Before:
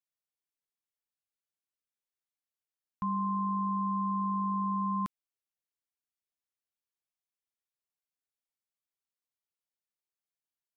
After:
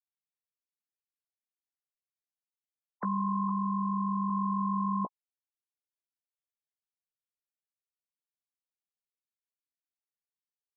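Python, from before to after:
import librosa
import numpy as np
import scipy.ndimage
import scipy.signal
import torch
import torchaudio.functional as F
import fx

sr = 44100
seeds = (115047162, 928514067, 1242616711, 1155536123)

y = fx.sine_speech(x, sr)
y = fx.lowpass(y, sr, hz=1200.0, slope=24, at=(3.49, 4.3))
y = fx.doubler(y, sr, ms=16.0, db=-10.5)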